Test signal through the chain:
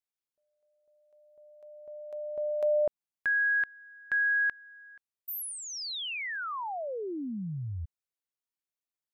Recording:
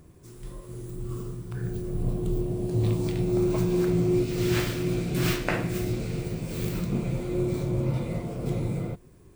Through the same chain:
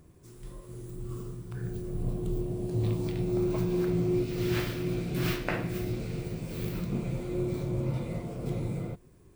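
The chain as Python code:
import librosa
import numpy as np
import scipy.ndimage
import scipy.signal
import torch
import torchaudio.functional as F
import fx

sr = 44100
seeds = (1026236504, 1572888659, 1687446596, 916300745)

y = fx.dynamic_eq(x, sr, hz=7500.0, q=1.4, threshold_db=-53.0, ratio=4.0, max_db=-6)
y = F.gain(torch.from_numpy(y), -4.0).numpy()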